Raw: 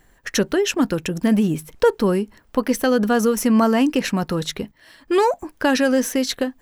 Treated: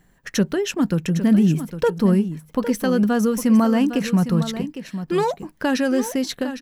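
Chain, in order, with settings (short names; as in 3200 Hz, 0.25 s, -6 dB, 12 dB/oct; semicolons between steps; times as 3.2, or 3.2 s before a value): bell 170 Hz +11.5 dB 0.75 oct; echo 0.807 s -11 dB; gain -4.5 dB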